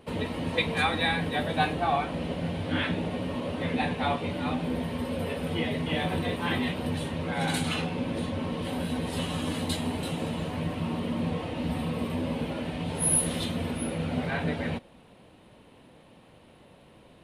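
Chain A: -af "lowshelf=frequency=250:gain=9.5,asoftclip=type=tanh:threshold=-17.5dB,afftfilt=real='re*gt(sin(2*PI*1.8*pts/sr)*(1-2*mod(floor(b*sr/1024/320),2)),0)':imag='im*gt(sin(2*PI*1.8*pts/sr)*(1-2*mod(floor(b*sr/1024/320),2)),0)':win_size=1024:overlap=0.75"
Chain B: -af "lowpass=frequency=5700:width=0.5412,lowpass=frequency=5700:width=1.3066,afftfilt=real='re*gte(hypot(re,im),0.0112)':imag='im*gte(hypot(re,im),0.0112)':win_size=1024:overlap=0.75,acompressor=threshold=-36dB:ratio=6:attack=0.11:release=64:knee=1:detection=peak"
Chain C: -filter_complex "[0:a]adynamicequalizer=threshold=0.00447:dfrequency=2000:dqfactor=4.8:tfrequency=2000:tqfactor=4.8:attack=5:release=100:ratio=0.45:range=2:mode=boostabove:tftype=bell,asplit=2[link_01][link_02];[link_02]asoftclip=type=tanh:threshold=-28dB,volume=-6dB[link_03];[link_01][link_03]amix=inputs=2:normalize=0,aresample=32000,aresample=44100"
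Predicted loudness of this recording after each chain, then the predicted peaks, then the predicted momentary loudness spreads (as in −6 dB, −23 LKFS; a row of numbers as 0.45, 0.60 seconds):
−30.5, −41.0, −27.0 LKFS; −16.0, −31.5, −10.0 dBFS; 4, 1, 6 LU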